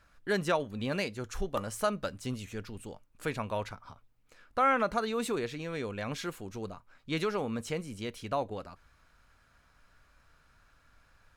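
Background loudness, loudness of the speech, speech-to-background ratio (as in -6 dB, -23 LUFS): -44.5 LUFS, -34.0 LUFS, 10.5 dB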